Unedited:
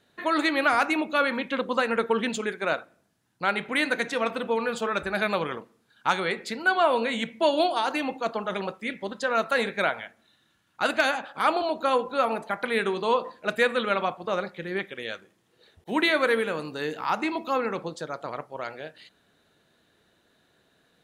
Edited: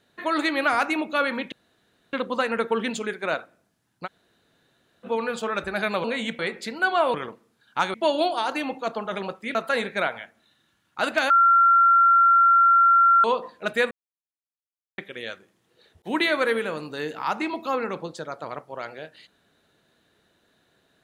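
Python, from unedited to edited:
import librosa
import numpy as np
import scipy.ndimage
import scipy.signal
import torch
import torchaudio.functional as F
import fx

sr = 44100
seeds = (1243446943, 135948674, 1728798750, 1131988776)

y = fx.edit(x, sr, fx.insert_room_tone(at_s=1.52, length_s=0.61),
    fx.room_tone_fill(start_s=3.45, length_s=0.99, crossfade_s=0.04),
    fx.swap(start_s=5.43, length_s=0.8, other_s=6.98, other_length_s=0.35),
    fx.cut(start_s=8.94, length_s=0.43),
    fx.bleep(start_s=11.12, length_s=1.94, hz=1370.0, db=-13.0),
    fx.silence(start_s=13.73, length_s=1.07), tone=tone)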